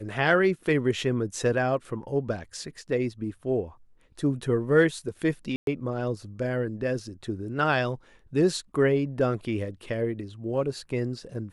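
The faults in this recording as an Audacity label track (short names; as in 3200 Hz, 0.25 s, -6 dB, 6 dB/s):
2.440000	2.440000	gap 4.3 ms
5.560000	5.670000	gap 0.112 s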